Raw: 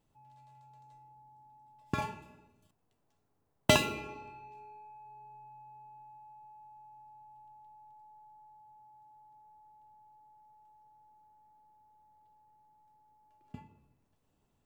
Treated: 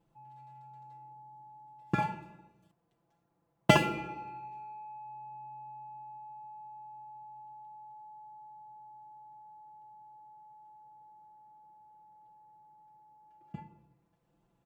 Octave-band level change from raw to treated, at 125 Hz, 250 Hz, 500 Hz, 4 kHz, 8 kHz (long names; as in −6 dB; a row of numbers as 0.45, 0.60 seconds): +4.0, +3.5, +0.5, −2.5, −6.0 decibels